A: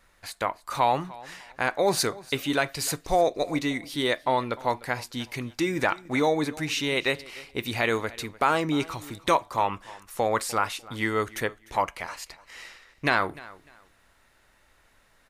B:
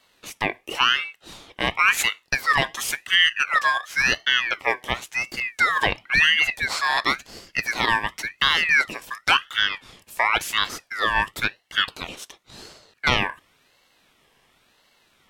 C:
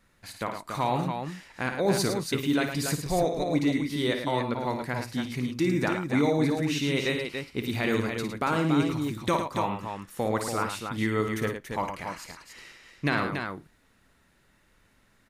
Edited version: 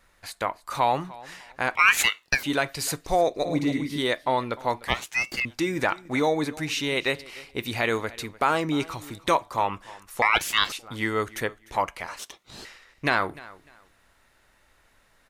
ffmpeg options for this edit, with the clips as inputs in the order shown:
-filter_complex "[1:a]asplit=4[a][b][c][d];[0:a]asplit=6[e][f][g][h][i][j];[e]atrim=end=1.752[k];[a]atrim=start=1.748:end=2.432[l];[f]atrim=start=2.428:end=3.452[m];[2:a]atrim=start=3.448:end=3.982[n];[g]atrim=start=3.978:end=4.882[o];[b]atrim=start=4.878:end=5.452[p];[h]atrim=start=5.448:end=10.222[q];[c]atrim=start=10.218:end=10.722[r];[i]atrim=start=10.718:end=12.192[s];[d]atrim=start=12.188:end=12.652[t];[j]atrim=start=12.648[u];[k][l]acrossfade=d=0.004:c1=hsin:c2=hsin[v];[v][m]acrossfade=d=0.004:c1=hsin:c2=hsin[w];[w][n]acrossfade=d=0.004:c1=hsin:c2=hsin[x];[x][o]acrossfade=d=0.004:c1=hsin:c2=hsin[y];[y][p]acrossfade=d=0.004:c1=hsin:c2=hsin[z];[z][q]acrossfade=d=0.004:c1=hsin:c2=hsin[aa];[aa][r]acrossfade=d=0.004:c1=hsin:c2=hsin[ab];[ab][s]acrossfade=d=0.004:c1=hsin:c2=hsin[ac];[ac][t]acrossfade=d=0.004:c1=hsin:c2=hsin[ad];[ad][u]acrossfade=d=0.004:c1=hsin:c2=hsin"

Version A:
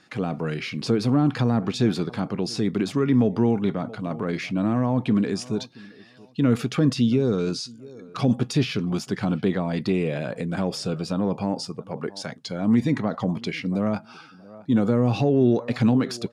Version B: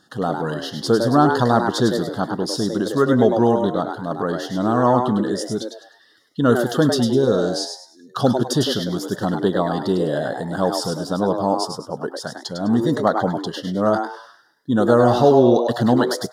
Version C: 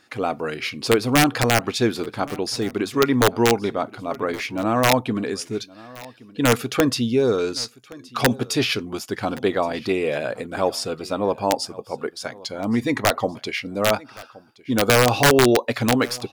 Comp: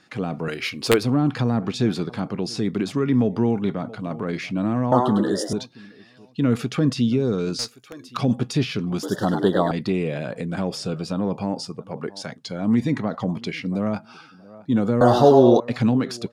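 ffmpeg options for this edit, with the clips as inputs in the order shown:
-filter_complex "[2:a]asplit=2[a][b];[1:a]asplit=3[c][d][e];[0:a]asplit=6[f][g][h][i][j][k];[f]atrim=end=0.482[l];[a]atrim=start=0.478:end=1.032[m];[g]atrim=start=1.028:end=4.922[n];[c]atrim=start=4.918:end=5.532[o];[h]atrim=start=5.528:end=7.592[p];[b]atrim=start=7.588:end=8.172[q];[i]atrim=start=8.168:end=9.032[r];[d]atrim=start=9.028:end=9.712[s];[j]atrim=start=9.708:end=15.012[t];[e]atrim=start=15.008:end=15.602[u];[k]atrim=start=15.598[v];[l][m]acrossfade=d=0.004:c1=hsin:c2=hsin[w];[w][n]acrossfade=d=0.004:c1=hsin:c2=hsin[x];[x][o]acrossfade=d=0.004:c1=hsin:c2=hsin[y];[y][p]acrossfade=d=0.004:c1=hsin:c2=hsin[z];[z][q]acrossfade=d=0.004:c1=hsin:c2=hsin[aa];[aa][r]acrossfade=d=0.004:c1=hsin:c2=hsin[ab];[ab][s]acrossfade=d=0.004:c1=hsin:c2=hsin[ac];[ac][t]acrossfade=d=0.004:c1=hsin:c2=hsin[ad];[ad][u]acrossfade=d=0.004:c1=hsin:c2=hsin[ae];[ae][v]acrossfade=d=0.004:c1=hsin:c2=hsin"

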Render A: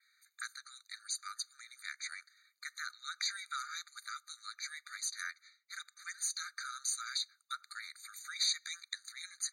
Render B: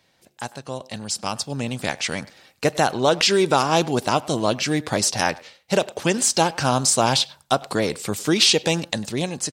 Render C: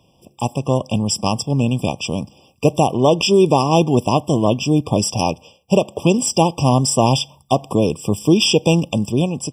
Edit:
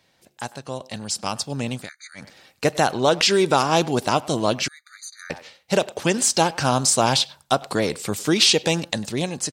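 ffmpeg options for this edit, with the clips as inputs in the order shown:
-filter_complex "[0:a]asplit=2[a][b];[1:a]asplit=3[c][d][e];[c]atrim=end=1.9[f];[a]atrim=start=1.74:end=2.3[g];[d]atrim=start=2.14:end=4.682[h];[b]atrim=start=4.678:end=5.302[i];[e]atrim=start=5.298[j];[f][g]acrossfade=d=0.16:c1=tri:c2=tri[k];[k][h]acrossfade=d=0.16:c1=tri:c2=tri[l];[l][i]acrossfade=d=0.004:c1=hsin:c2=hsin[m];[m][j]acrossfade=d=0.004:c1=hsin:c2=hsin"

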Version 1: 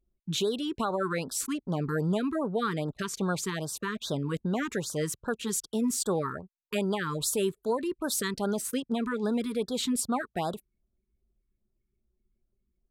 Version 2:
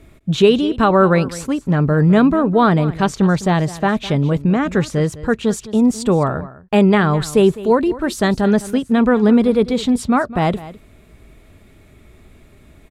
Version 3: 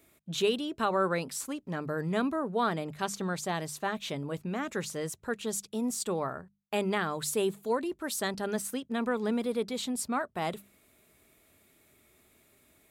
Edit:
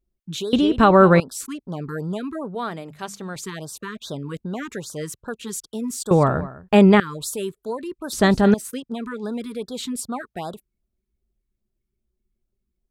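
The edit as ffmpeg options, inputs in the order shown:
-filter_complex "[1:a]asplit=3[a][b][c];[0:a]asplit=5[d][e][f][g][h];[d]atrim=end=0.532[i];[a]atrim=start=0.528:end=1.202[j];[e]atrim=start=1.198:end=2.552[k];[2:a]atrim=start=2.548:end=3.362[l];[f]atrim=start=3.358:end=6.112[m];[b]atrim=start=6.108:end=7.002[n];[g]atrim=start=6.998:end=8.132[o];[c]atrim=start=8.128:end=8.542[p];[h]atrim=start=8.538[q];[i][j]acrossfade=d=0.004:c1=hsin:c2=hsin[r];[r][k]acrossfade=d=0.004:c1=hsin:c2=hsin[s];[s][l]acrossfade=d=0.004:c1=hsin:c2=hsin[t];[t][m]acrossfade=d=0.004:c1=hsin:c2=hsin[u];[u][n]acrossfade=d=0.004:c1=hsin:c2=hsin[v];[v][o]acrossfade=d=0.004:c1=hsin:c2=hsin[w];[w][p]acrossfade=d=0.004:c1=hsin:c2=hsin[x];[x][q]acrossfade=d=0.004:c1=hsin:c2=hsin"

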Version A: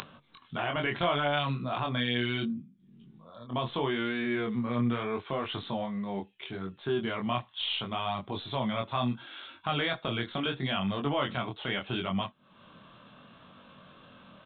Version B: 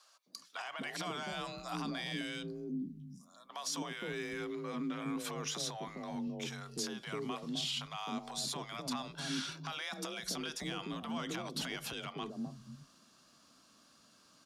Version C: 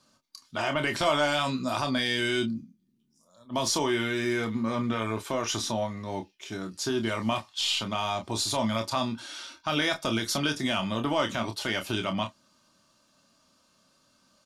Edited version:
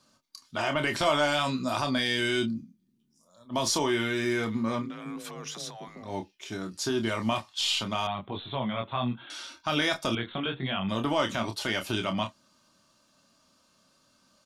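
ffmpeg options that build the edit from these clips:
-filter_complex "[0:a]asplit=2[a][b];[2:a]asplit=4[c][d][e][f];[c]atrim=end=4.91[g];[1:a]atrim=start=4.75:end=6.15[h];[d]atrim=start=5.99:end=8.072[i];[a]atrim=start=8.068:end=9.302[j];[e]atrim=start=9.298:end=10.152[k];[b]atrim=start=10.148:end=10.892[l];[f]atrim=start=10.888[m];[g][h]acrossfade=d=0.16:c1=tri:c2=tri[n];[n][i]acrossfade=d=0.16:c1=tri:c2=tri[o];[o][j]acrossfade=d=0.004:c1=hsin:c2=hsin[p];[p][k]acrossfade=d=0.004:c1=hsin:c2=hsin[q];[q][l]acrossfade=d=0.004:c1=hsin:c2=hsin[r];[r][m]acrossfade=d=0.004:c1=hsin:c2=hsin"

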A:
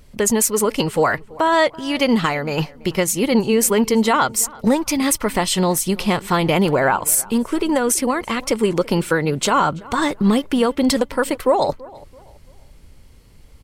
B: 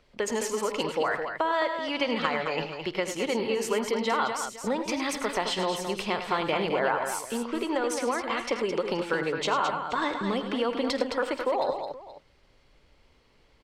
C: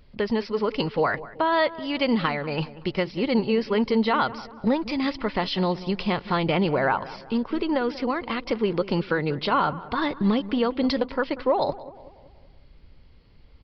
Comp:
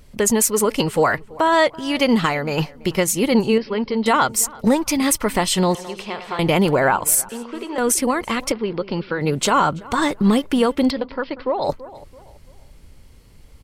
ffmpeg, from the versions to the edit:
-filter_complex "[2:a]asplit=3[a][b][c];[1:a]asplit=2[d][e];[0:a]asplit=6[f][g][h][i][j][k];[f]atrim=end=3.582[l];[a]atrim=start=3.578:end=4.062[m];[g]atrim=start=4.058:end=5.752[n];[d]atrim=start=5.748:end=6.392[o];[h]atrim=start=6.388:end=7.292[p];[e]atrim=start=7.288:end=7.782[q];[i]atrim=start=7.778:end=8.522[r];[b]atrim=start=8.518:end=9.212[s];[j]atrim=start=9.208:end=10.91[t];[c]atrim=start=10.87:end=11.67[u];[k]atrim=start=11.63[v];[l][m]acrossfade=d=0.004:c1=hsin:c2=hsin[w];[w][n]acrossfade=d=0.004:c1=hsin:c2=hsin[x];[x][o]acrossfade=d=0.004:c1=hsin:c2=hsin[y];[y][p]acrossfade=d=0.004:c1=hsin:c2=hsin[z];[z][q]acrossfade=d=0.004:c1=hsin:c2=hsin[aa];[aa][r]acrossfade=d=0.004:c1=hsin:c2=hsin[ab];[ab][s]acrossfade=d=0.004:c1=hsin:c2=hsin[ac];[ac][t]acrossfade=d=0.004:c1=hsin:c2=hsin[ad];[ad][u]acrossfade=d=0.04:c1=tri:c2=tri[ae];[ae][v]acrossfade=d=0.04:c1=tri:c2=tri"

